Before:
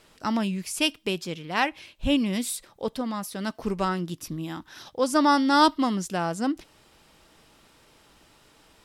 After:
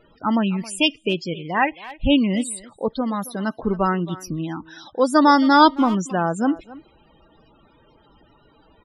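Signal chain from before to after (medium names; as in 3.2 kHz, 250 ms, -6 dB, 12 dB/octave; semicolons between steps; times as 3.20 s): loudest bins only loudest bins 32; speakerphone echo 270 ms, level -17 dB; trim +6 dB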